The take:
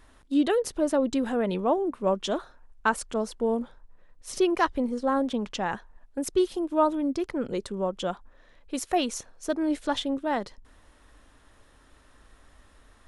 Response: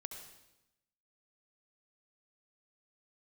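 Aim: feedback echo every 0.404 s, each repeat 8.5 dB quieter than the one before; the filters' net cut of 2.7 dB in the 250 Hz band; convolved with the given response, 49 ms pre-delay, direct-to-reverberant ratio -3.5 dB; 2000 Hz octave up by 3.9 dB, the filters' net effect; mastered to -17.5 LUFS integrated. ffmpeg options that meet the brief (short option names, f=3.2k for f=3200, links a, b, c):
-filter_complex "[0:a]equalizer=f=250:t=o:g=-3.5,equalizer=f=2k:t=o:g=5.5,aecho=1:1:404|808|1212|1616:0.376|0.143|0.0543|0.0206,asplit=2[a][b];[1:a]atrim=start_sample=2205,adelay=49[c];[b][c]afir=irnorm=-1:irlink=0,volume=6.5dB[d];[a][d]amix=inputs=2:normalize=0,volume=5.5dB"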